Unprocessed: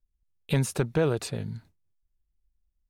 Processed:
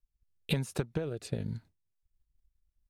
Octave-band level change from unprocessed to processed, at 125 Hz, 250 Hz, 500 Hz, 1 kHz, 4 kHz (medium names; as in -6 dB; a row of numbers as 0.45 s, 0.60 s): -6.5 dB, -6.0 dB, -9.0 dB, -10.5 dB, -2.5 dB